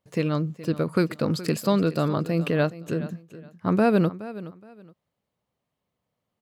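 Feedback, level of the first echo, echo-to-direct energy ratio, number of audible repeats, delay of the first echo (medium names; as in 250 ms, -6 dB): 24%, -16.0 dB, -16.0 dB, 2, 420 ms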